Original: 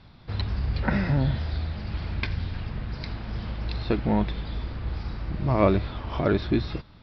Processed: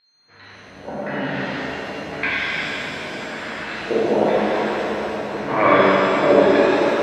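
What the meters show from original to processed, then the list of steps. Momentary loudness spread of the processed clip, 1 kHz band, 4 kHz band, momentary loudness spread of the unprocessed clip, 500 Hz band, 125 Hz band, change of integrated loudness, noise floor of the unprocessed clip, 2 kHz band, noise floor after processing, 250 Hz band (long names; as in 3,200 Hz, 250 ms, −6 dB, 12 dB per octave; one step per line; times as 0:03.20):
14 LU, +13.0 dB, +9.5 dB, 11 LU, +12.5 dB, −8.0 dB, +8.5 dB, −50 dBFS, +14.5 dB, −48 dBFS, +5.0 dB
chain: fade in at the beginning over 1.90 s
high-pass filter 290 Hz 12 dB per octave
high-shelf EQ 2,500 Hz +10 dB
steady tone 4,200 Hz −49 dBFS
auto-filter low-pass square 0.94 Hz 610–1,900 Hz
on a send: tape delay 198 ms, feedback 86%, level −7 dB, low-pass 2,400 Hz
on the sum: reverb with rising layers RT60 2.5 s, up +7 semitones, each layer −8 dB, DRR −10.5 dB
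level −3 dB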